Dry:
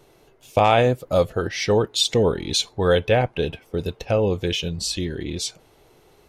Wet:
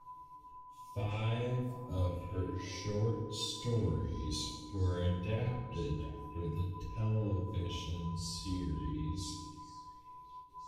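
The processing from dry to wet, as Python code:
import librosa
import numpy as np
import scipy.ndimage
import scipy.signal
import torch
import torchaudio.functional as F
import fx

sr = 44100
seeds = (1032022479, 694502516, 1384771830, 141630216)

p1 = fx.tone_stack(x, sr, knobs='10-0-1')
p2 = p1 + 10.0 ** (-56.0 / 20.0) * np.sin(2.0 * np.pi * 1000.0 * np.arange(len(p1)) / sr)
p3 = fx.stretch_vocoder(p2, sr, factor=1.7)
p4 = np.clip(10.0 ** (35.5 / 20.0) * p3, -1.0, 1.0) / 10.0 ** (35.5 / 20.0)
p5 = p3 + F.gain(torch.from_numpy(p4), -6.5).numpy()
p6 = fx.chorus_voices(p5, sr, voices=6, hz=0.39, base_ms=17, depth_ms=4.2, mix_pct=40)
p7 = p6 + fx.echo_stepped(p6, sr, ms=356, hz=310.0, octaves=1.4, feedback_pct=70, wet_db=-9.5, dry=0)
p8 = fx.rev_fdn(p7, sr, rt60_s=1.1, lf_ratio=1.35, hf_ratio=0.75, size_ms=20.0, drr_db=-1.5)
y = fx.end_taper(p8, sr, db_per_s=140.0)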